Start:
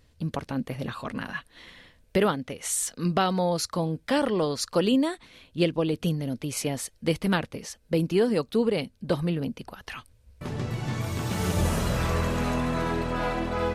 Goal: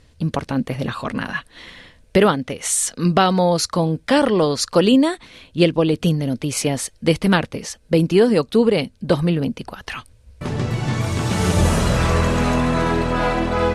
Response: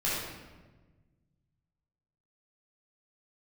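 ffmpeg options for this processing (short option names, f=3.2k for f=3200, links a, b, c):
-af "lowpass=f=11k:w=0.5412,lowpass=f=11k:w=1.3066,volume=8.5dB"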